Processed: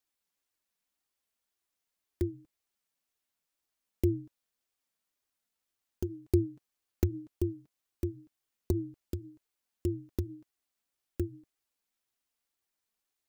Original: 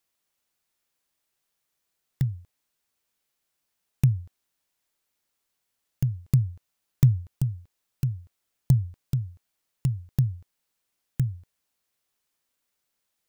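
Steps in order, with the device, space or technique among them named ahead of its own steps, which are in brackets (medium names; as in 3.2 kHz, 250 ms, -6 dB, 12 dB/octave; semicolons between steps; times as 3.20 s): alien voice (ring modulator 220 Hz; flange 1.9 Hz, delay 2.4 ms, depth 2.3 ms, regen -27%)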